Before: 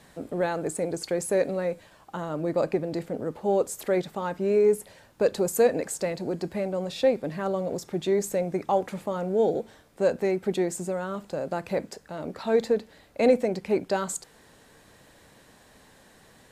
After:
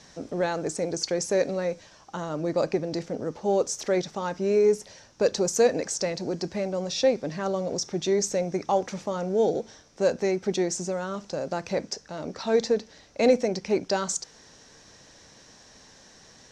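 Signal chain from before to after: resonant low-pass 5.8 kHz, resonance Q 7.4

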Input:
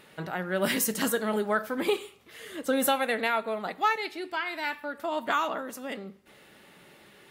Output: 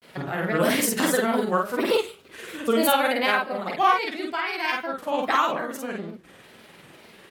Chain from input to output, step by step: granulator, spray 30 ms, pitch spread up and down by 3 st; vibrato 1.1 Hz 9.9 cents; doubling 48 ms -2 dB; trim +4.5 dB

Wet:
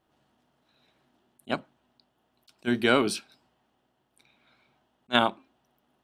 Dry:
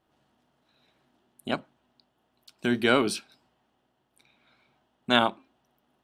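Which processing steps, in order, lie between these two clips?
attacks held to a fixed rise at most 600 dB/s

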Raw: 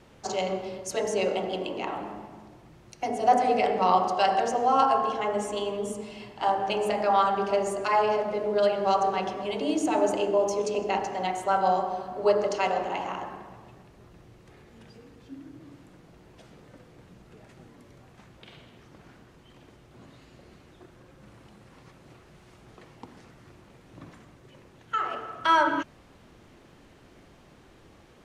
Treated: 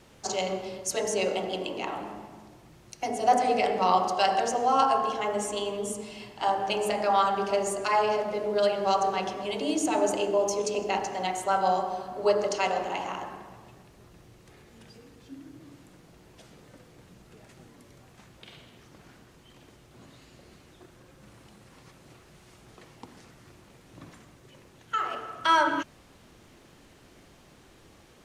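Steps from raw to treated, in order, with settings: treble shelf 4 kHz +9 dB; trim -1.5 dB

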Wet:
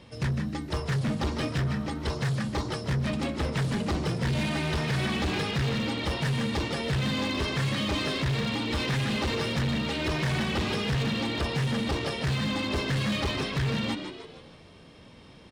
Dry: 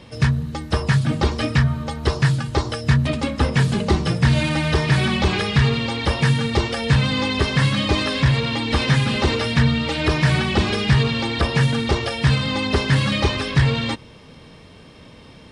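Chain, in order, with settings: frequency-shifting echo 154 ms, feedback 47%, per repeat +76 Hz, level -8.5 dB; hard clipper -16.5 dBFS, distortion -10 dB; trim -7.5 dB

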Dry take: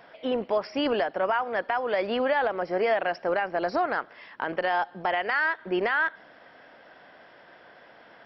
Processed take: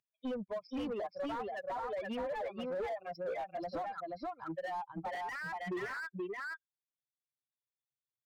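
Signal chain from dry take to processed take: expander on every frequency bin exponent 3; compression 6:1, threshold -36 dBFS, peak gain reduction 12 dB; delay 478 ms -4 dB; saturation -39 dBFS, distortion -10 dB; distance through air 220 m; slew-rate limiter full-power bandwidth 8.1 Hz; trim +6 dB

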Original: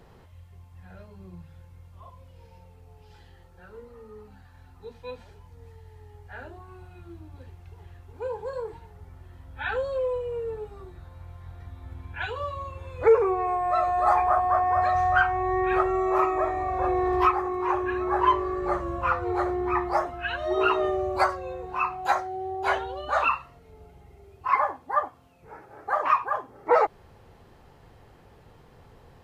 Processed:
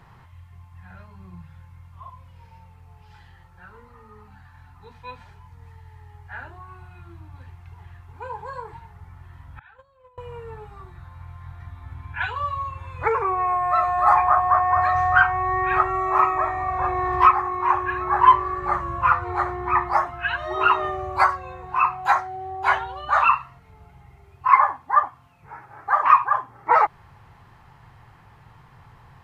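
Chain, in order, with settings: 9.59–10.18 s: gate -23 dBFS, range -27 dB; graphic EQ 125/250/500/1000/2000 Hz +9/-3/-9/+10/+6 dB; trim -1 dB

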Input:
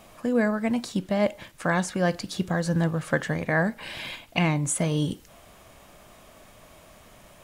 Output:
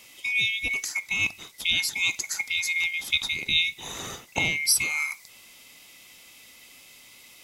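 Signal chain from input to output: split-band scrambler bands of 2 kHz; resonant high shelf 3.5 kHz +7.5 dB, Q 1.5; trim -1.5 dB

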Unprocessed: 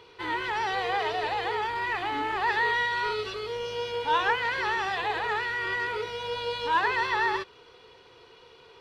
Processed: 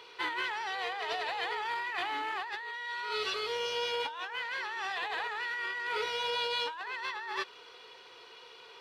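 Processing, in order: high-pass 970 Hz 6 dB/octave; compressor with a negative ratio -36 dBFS, ratio -1

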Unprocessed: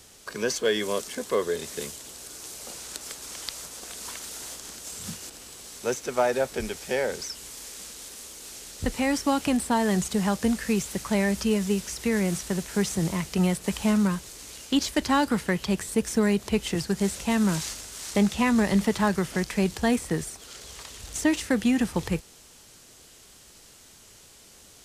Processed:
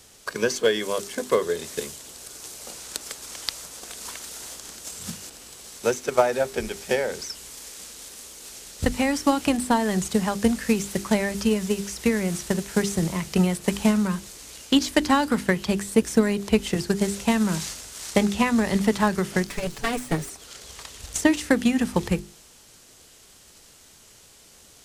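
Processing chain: 19.47–20.30 s: comb filter that takes the minimum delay 7 ms; transient shaper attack +7 dB, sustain +1 dB; hum notches 50/100/150/200/250/300/350/400 Hz

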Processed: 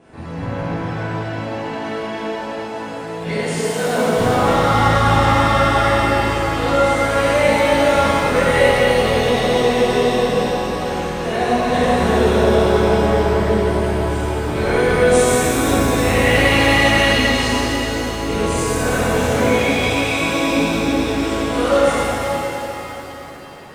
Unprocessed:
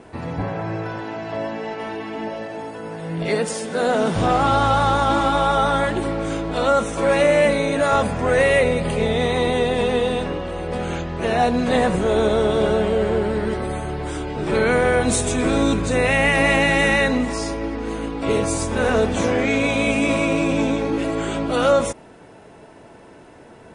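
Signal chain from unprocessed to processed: 19.74–20.21 s: high-pass 670 Hz; pitch-shifted reverb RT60 3.4 s, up +7 st, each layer -8 dB, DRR -11.5 dB; trim -9 dB

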